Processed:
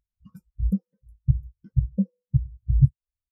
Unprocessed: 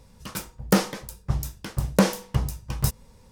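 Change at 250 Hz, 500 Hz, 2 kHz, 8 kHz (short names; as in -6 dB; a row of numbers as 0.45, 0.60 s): -2.5 dB, -23.0 dB, under -40 dB, under -40 dB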